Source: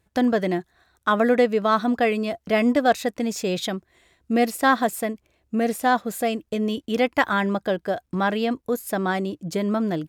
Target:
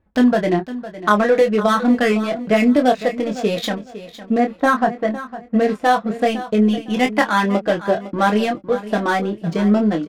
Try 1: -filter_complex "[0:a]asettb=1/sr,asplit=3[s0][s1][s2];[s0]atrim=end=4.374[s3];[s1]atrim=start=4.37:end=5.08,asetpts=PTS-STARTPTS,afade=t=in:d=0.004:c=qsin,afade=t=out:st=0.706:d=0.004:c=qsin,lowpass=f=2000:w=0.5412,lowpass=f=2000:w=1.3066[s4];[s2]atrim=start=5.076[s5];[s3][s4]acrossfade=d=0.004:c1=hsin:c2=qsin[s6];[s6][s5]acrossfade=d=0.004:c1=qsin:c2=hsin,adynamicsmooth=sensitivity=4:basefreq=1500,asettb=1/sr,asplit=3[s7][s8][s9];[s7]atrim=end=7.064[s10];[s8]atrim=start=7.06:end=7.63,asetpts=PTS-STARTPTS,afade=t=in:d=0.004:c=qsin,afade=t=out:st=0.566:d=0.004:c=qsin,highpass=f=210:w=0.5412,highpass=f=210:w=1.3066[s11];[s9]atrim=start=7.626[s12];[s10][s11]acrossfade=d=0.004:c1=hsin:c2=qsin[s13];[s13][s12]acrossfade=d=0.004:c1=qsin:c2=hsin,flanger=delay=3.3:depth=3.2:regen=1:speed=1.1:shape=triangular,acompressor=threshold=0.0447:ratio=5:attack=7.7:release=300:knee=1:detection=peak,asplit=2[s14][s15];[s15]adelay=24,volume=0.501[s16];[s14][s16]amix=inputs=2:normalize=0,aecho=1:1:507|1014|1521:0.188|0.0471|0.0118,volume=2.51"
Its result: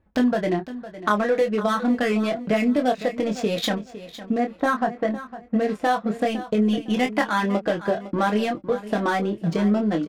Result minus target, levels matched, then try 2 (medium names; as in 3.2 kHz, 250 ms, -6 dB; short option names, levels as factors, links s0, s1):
compression: peak gain reduction +6.5 dB
-filter_complex "[0:a]asettb=1/sr,asplit=3[s0][s1][s2];[s0]atrim=end=4.374[s3];[s1]atrim=start=4.37:end=5.08,asetpts=PTS-STARTPTS,afade=t=in:d=0.004:c=qsin,afade=t=out:st=0.706:d=0.004:c=qsin,lowpass=f=2000:w=0.5412,lowpass=f=2000:w=1.3066[s4];[s2]atrim=start=5.076[s5];[s3][s4]acrossfade=d=0.004:c1=hsin:c2=qsin[s6];[s6][s5]acrossfade=d=0.004:c1=qsin:c2=hsin,adynamicsmooth=sensitivity=4:basefreq=1500,asettb=1/sr,asplit=3[s7][s8][s9];[s7]atrim=end=7.064[s10];[s8]atrim=start=7.06:end=7.63,asetpts=PTS-STARTPTS,afade=t=in:d=0.004:c=qsin,afade=t=out:st=0.566:d=0.004:c=qsin,highpass=f=210:w=0.5412,highpass=f=210:w=1.3066[s11];[s9]atrim=start=7.626[s12];[s10][s11]acrossfade=d=0.004:c1=hsin:c2=qsin[s13];[s13][s12]acrossfade=d=0.004:c1=qsin:c2=hsin,flanger=delay=3.3:depth=3.2:regen=1:speed=1.1:shape=triangular,acompressor=threshold=0.112:ratio=5:attack=7.7:release=300:knee=1:detection=peak,asplit=2[s14][s15];[s15]adelay=24,volume=0.501[s16];[s14][s16]amix=inputs=2:normalize=0,aecho=1:1:507|1014|1521:0.188|0.0471|0.0118,volume=2.51"